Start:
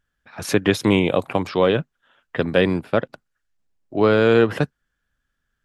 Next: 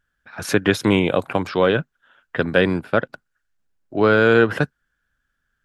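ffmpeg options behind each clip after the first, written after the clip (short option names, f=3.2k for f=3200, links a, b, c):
-af "equalizer=f=1.5k:t=o:w=0.33:g=7.5"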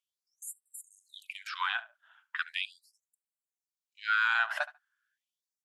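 -filter_complex "[0:a]asplit=2[a][b];[b]adelay=71,lowpass=f=2.1k:p=1,volume=-15.5dB,asplit=2[c][d];[d]adelay=71,lowpass=f=2.1k:p=1,volume=0.2[e];[a][c][e]amix=inputs=3:normalize=0,afftfilt=real='re*gte(b*sr/1024,590*pow(7500/590,0.5+0.5*sin(2*PI*0.38*pts/sr)))':imag='im*gte(b*sr/1024,590*pow(7500/590,0.5+0.5*sin(2*PI*0.38*pts/sr)))':win_size=1024:overlap=0.75,volume=-6.5dB"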